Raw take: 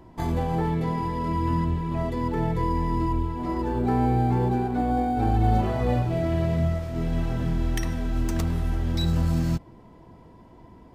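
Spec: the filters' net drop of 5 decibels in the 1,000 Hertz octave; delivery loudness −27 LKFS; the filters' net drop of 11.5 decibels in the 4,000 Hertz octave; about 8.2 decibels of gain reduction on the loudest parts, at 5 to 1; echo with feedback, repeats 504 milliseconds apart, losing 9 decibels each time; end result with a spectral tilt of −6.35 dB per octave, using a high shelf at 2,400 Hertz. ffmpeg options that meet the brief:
ffmpeg -i in.wav -af "equalizer=frequency=1000:width_type=o:gain=-5.5,highshelf=frequency=2400:gain=-6.5,equalizer=frequency=4000:width_type=o:gain=-8,acompressor=threshold=-28dB:ratio=5,aecho=1:1:504|1008|1512|2016:0.355|0.124|0.0435|0.0152,volume=5dB" out.wav

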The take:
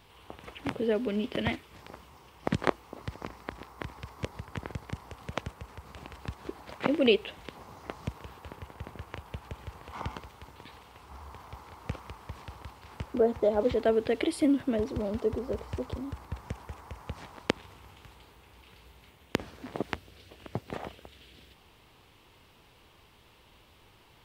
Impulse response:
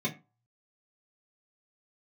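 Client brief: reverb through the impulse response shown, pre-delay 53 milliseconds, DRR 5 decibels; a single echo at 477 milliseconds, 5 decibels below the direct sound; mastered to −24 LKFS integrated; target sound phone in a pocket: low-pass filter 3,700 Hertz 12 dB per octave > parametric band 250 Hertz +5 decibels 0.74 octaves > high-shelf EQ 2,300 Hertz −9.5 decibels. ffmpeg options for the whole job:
-filter_complex "[0:a]aecho=1:1:477:0.562,asplit=2[link_01][link_02];[1:a]atrim=start_sample=2205,adelay=53[link_03];[link_02][link_03]afir=irnorm=-1:irlink=0,volume=-11dB[link_04];[link_01][link_04]amix=inputs=2:normalize=0,lowpass=3700,equalizer=frequency=250:width_type=o:width=0.74:gain=5,highshelf=frequency=2300:gain=-9.5,volume=2dB"

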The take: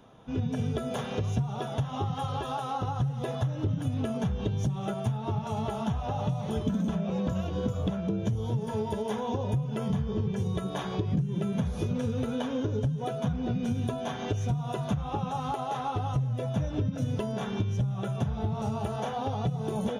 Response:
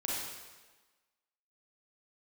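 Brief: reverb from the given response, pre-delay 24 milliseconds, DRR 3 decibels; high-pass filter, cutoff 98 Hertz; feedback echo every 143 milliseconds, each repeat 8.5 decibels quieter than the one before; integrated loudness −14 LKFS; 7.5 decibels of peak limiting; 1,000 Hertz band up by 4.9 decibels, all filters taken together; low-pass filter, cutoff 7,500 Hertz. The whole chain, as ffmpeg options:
-filter_complex "[0:a]highpass=98,lowpass=7500,equalizer=frequency=1000:width_type=o:gain=6.5,alimiter=limit=-22.5dB:level=0:latency=1,aecho=1:1:143|286|429|572:0.376|0.143|0.0543|0.0206,asplit=2[link_01][link_02];[1:a]atrim=start_sample=2205,adelay=24[link_03];[link_02][link_03]afir=irnorm=-1:irlink=0,volume=-7.5dB[link_04];[link_01][link_04]amix=inputs=2:normalize=0,volume=15.5dB"

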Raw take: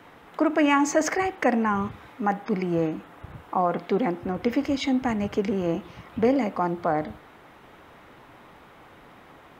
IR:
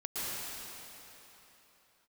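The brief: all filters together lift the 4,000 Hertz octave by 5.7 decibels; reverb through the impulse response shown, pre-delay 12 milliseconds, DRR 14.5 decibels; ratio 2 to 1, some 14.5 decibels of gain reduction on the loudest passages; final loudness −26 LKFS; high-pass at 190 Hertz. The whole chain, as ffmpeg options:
-filter_complex "[0:a]highpass=190,equalizer=frequency=4000:width_type=o:gain=8,acompressor=threshold=-44dB:ratio=2,asplit=2[link_01][link_02];[1:a]atrim=start_sample=2205,adelay=12[link_03];[link_02][link_03]afir=irnorm=-1:irlink=0,volume=-20dB[link_04];[link_01][link_04]amix=inputs=2:normalize=0,volume=13.5dB"

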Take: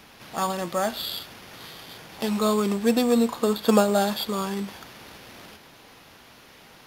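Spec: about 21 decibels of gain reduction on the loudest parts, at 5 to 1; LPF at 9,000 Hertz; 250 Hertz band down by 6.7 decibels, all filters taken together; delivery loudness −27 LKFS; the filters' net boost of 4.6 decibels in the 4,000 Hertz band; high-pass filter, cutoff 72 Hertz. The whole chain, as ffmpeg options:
ffmpeg -i in.wav -af "highpass=72,lowpass=9000,equalizer=frequency=250:width_type=o:gain=-8,equalizer=frequency=4000:width_type=o:gain=5.5,acompressor=threshold=-41dB:ratio=5,volume=16dB" out.wav

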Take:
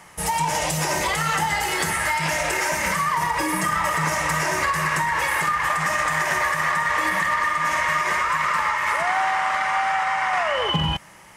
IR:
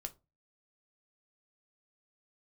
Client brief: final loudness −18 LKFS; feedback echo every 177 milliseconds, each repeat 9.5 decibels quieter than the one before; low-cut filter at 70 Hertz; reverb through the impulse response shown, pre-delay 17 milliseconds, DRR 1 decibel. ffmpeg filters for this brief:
-filter_complex "[0:a]highpass=70,aecho=1:1:177|354|531|708:0.335|0.111|0.0365|0.012,asplit=2[link_01][link_02];[1:a]atrim=start_sample=2205,adelay=17[link_03];[link_02][link_03]afir=irnorm=-1:irlink=0,volume=2dB[link_04];[link_01][link_04]amix=inputs=2:normalize=0,volume=0.5dB"

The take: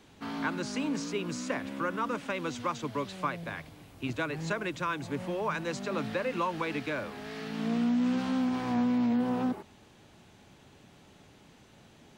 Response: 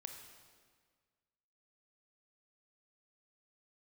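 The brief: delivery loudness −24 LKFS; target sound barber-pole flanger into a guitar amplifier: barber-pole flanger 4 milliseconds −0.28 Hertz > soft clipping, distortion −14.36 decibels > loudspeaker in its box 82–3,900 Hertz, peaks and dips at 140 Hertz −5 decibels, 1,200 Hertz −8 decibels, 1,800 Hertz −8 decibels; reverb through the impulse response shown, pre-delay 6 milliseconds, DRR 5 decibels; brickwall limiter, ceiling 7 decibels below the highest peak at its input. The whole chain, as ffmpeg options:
-filter_complex "[0:a]alimiter=level_in=1.5dB:limit=-24dB:level=0:latency=1,volume=-1.5dB,asplit=2[link_01][link_02];[1:a]atrim=start_sample=2205,adelay=6[link_03];[link_02][link_03]afir=irnorm=-1:irlink=0,volume=-1dB[link_04];[link_01][link_04]amix=inputs=2:normalize=0,asplit=2[link_05][link_06];[link_06]adelay=4,afreqshift=-0.28[link_07];[link_05][link_07]amix=inputs=2:normalize=1,asoftclip=threshold=-32.5dB,highpass=82,equalizer=frequency=140:width_type=q:width=4:gain=-5,equalizer=frequency=1200:width_type=q:width=4:gain=-8,equalizer=frequency=1800:width_type=q:width=4:gain=-8,lowpass=frequency=3900:width=0.5412,lowpass=frequency=3900:width=1.3066,volume=17dB"

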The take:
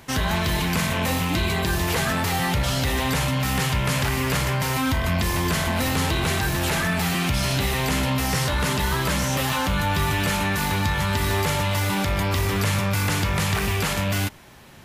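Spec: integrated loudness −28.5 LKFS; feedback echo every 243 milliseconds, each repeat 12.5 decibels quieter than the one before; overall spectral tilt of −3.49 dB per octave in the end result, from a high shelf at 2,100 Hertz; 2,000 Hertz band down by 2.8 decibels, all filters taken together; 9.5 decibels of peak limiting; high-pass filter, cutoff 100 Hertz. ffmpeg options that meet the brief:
ffmpeg -i in.wav -af "highpass=100,equalizer=frequency=2000:width_type=o:gain=-7,highshelf=frequency=2100:gain=6,alimiter=limit=-18dB:level=0:latency=1,aecho=1:1:243|486|729:0.237|0.0569|0.0137,volume=-2.5dB" out.wav

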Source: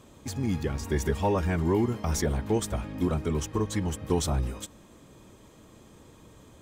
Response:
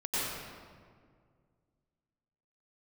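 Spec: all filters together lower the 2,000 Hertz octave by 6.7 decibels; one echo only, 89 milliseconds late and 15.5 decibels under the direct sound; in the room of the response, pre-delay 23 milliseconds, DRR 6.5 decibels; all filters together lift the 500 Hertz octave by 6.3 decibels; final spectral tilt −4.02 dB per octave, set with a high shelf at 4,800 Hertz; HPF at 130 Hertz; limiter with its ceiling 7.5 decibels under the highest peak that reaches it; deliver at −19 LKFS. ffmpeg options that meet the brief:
-filter_complex "[0:a]highpass=130,equalizer=frequency=500:width_type=o:gain=8.5,equalizer=frequency=2000:width_type=o:gain=-8.5,highshelf=frequency=4800:gain=-5.5,alimiter=limit=-17dB:level=0:latency=1,aecho=1:1:89:0.168,asplit=2[link_01][link_02];[1:a]atrim=start_sample=2205,adelay=23[link_03];[link_02][link_03]afir=irnorm=-1:irlink=0,volume=-14.5dB[link_04];[link_01][link_04]amix=inputs=2:normalize=0,volume=9dB"

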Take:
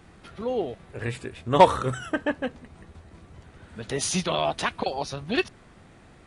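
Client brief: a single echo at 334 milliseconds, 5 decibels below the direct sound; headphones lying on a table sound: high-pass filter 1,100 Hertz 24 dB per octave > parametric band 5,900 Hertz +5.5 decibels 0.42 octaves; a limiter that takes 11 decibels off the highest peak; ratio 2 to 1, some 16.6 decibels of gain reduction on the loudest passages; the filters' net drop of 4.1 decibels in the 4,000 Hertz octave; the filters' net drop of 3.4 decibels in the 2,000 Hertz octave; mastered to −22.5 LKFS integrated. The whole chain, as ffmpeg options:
ffmpeg -i in.wav -af "equalizer=frequency=2000:width_type=o:gain=-3,equalizer=frequency=4000:width_type=o:gain=-5.5,acompressor=threshold=-41dB:ratio=2,alimiter=level_in=6.5dB:limit=-24dB:level=0:latency=1,volume=-6.5dB,highpass=frequency=1100:width=0.5412,highpass=frequency=1100:width=1.3066,equalizer=frequency=5900:width_type=o:width=0.42:gain=5.5,aecho=1:1:334:0.562,volume=23.5dB" out.wav

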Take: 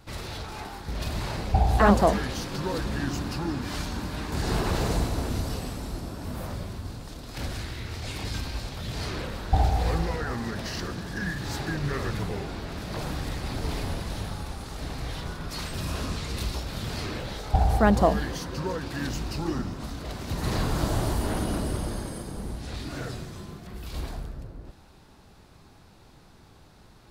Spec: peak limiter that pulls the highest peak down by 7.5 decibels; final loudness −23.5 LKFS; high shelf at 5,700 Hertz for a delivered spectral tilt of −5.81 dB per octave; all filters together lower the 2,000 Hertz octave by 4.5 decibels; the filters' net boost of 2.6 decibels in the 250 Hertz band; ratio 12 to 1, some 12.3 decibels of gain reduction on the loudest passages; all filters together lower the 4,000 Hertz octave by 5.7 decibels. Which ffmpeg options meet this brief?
ffmpeg -i in.wav -af "equalizer=frequency=250:width_type=o:gain=3.5,equalizer=frequency=2000:width_type=o:gain=-5,equalizer=frequency=4000:width_type=o:gain=-7.5,highshelf=frequency=5700:gain=4,acompressor=threshold=-25dB:ratio=12,volume=11dB,alimiter=limit=-13dB:level=0:latency=1" out.wav

